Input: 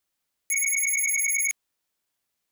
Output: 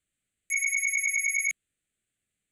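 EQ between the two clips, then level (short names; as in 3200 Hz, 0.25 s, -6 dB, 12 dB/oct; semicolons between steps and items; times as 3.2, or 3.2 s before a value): synth low-pass 8000 Hz, resonance Q 3.8; tone controls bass +8 dB, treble -3 dB; fixed phaser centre 2300 Hz, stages 4; 0.0 dB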